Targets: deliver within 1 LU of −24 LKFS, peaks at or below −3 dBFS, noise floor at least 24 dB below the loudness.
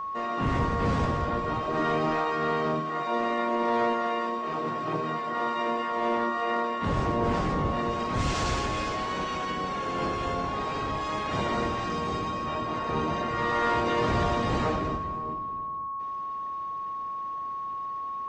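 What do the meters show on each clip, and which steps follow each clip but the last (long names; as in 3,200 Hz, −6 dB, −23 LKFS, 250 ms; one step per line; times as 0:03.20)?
interfering tone 1,100 Hz; level of the tone −31 dBFS; integrated loudness −28.5 LKFS; sample peak −16.0 dBFS; target loudness −24.0 LKFS
→ notch filter 1,100 Hz, Q 30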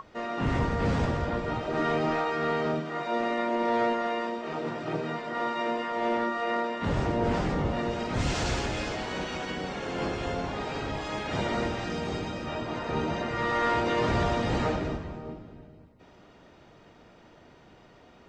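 interfering tone none found; integrated loudness −29.5 LKFS; sample peak −17.0 dBFS; target loudness −24.0 LKFS
→ level +5.5 dB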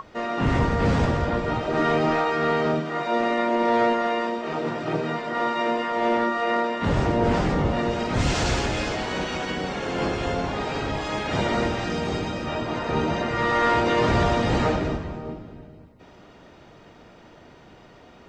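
integrated loudness −24.0 LKFS; sample peak −11.5 dBFS; background noise floor −49 dBFS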